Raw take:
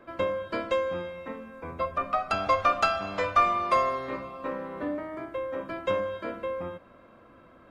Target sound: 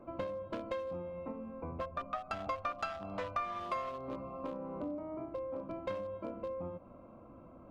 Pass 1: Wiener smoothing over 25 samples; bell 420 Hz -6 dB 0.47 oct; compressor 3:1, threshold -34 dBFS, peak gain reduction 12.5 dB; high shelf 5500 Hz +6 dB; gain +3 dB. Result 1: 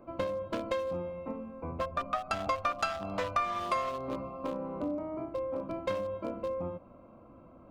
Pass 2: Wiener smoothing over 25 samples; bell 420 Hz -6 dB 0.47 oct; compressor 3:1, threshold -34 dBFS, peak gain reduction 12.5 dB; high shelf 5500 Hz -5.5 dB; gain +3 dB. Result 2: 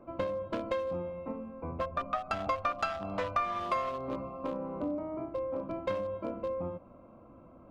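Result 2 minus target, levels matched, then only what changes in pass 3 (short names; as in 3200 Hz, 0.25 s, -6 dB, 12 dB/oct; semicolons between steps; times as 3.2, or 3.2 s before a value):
compressor: peak gain reduction -5.5 dB
change: compressor 3:1, threshold -42.5 dBFS, peak gain reduction 18.5 dB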